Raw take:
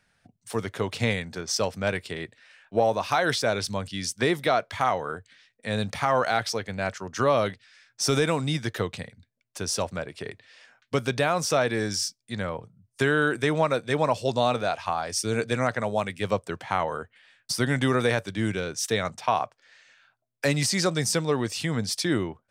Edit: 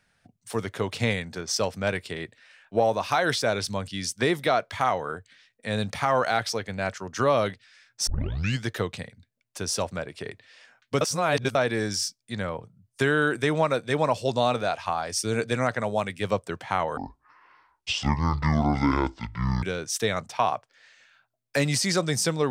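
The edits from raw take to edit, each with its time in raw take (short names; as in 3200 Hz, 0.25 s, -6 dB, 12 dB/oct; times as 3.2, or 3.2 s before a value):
8.07 tape start 0.57 s
11.01–11.55 reverse
16.97–18.51 speed 58%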